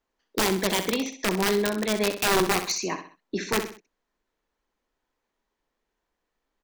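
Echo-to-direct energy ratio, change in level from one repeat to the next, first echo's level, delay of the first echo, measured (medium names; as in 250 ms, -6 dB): -9.0 dB, -8.5 dB, -9.5 dB, 64 ms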